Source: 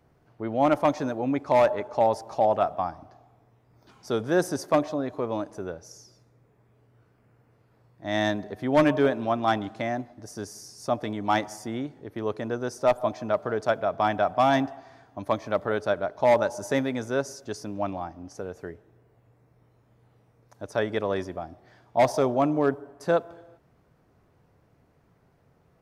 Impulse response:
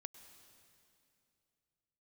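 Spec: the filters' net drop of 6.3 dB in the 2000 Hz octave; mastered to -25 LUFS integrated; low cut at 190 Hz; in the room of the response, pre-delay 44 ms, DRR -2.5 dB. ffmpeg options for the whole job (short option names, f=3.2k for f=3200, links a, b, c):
-filter_complex "[0:a]highpass=190,equalizer=f=2k:t=o:g=-8.5,asplit=2[a][b];[1:a]atrim=start_sample=2205,adelay=44[c];[b][c]afir=irnorm=-1:irlink=0,volume=8dB[d];[a][d]amix=inputs=2:normalize=0,volume=-1.5dB"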